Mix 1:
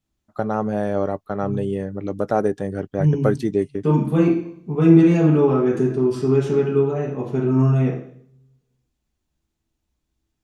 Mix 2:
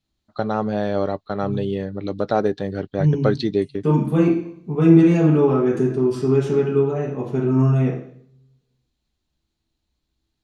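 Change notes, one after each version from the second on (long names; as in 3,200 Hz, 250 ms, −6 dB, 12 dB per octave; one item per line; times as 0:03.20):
first voice: add low-pass with resonance 4,100 Hz, resonance Q 6.3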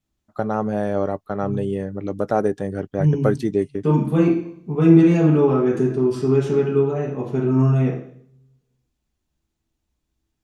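first voice: remove low-pass with resonance 4,100 Hz, resonance Q 6.3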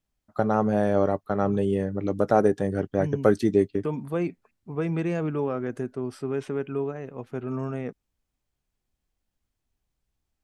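reverb: off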